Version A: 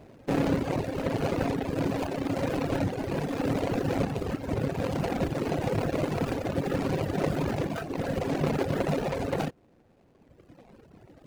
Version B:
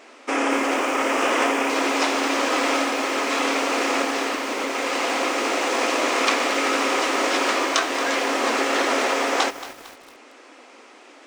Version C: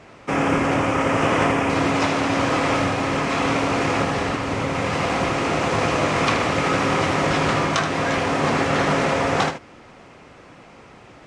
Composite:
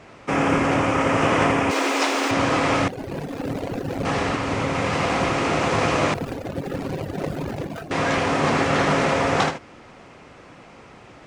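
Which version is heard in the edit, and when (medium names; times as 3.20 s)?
C
1.71–2.31 s: from B
2.88–4.05 s: from A
6.14–7.91 s: from A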